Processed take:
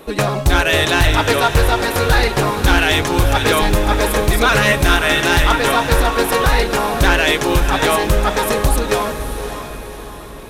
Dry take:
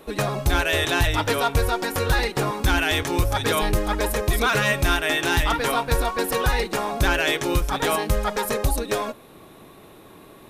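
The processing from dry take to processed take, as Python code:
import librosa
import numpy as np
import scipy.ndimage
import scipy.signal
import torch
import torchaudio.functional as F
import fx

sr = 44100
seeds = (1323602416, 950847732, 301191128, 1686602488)

y = fx.echo_diffused(x, sr, ms=584, feedback_pct=47, wet_db=-9.0)
y = fx.doppler_dist(y, sr, depth_ms=0.26)
y = y * 10.0 ** (7.0 / 20.0)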